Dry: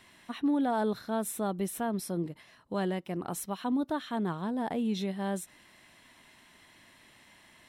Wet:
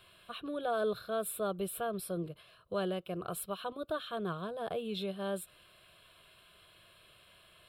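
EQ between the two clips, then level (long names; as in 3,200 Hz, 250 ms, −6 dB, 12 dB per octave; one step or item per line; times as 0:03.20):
phaser with its sweep stopped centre 1,300 Hz, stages 8
+1.5 dB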